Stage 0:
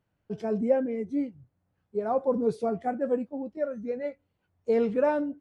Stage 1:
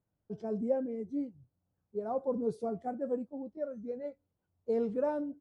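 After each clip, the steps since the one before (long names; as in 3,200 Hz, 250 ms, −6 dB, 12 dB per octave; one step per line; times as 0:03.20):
low-pass that shuts in the quiet parts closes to 2,600 Hz, open at −25.5 dBFS
parametric band 2,300 Hz −11.5 dB 1.5 octaves
level −6 dB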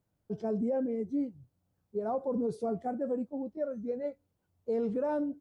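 brickwall limiter −29 dBFS, peak gain reduction 9.5 dB
level +4.5 dB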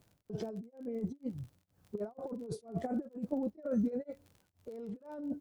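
compressor whose output falls as the input rises −38 dBFS, ratio −0.5
surface crackle 43 per second −51 dBFS
tremolo along a rectified sine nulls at 2.1 Hz
level +4.5 dB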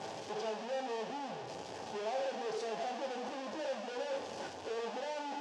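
sign of each sample alone
loudspeaker in its box 390–5,900 Hz, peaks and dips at 510 Hz +3 dB, 790 Hz +7 dB, 1,300 Hz −8 dB, 2,100 Hz −6 dB, 4,000 Hz −4 dB
coupled-rooms reverb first 0.48 s, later 2.8 s, from −16 dB, DRR 3 dB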